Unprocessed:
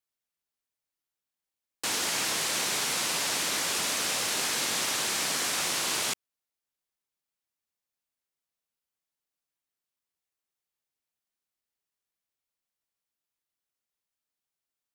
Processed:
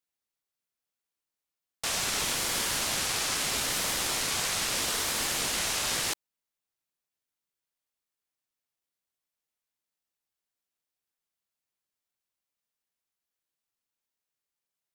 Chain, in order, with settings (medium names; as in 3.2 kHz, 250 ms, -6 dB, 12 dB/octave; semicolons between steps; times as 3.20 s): ring modulator with a swept carrier 1.5 kHz, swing 85%, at 0.78 Hz; trim +2.5 dB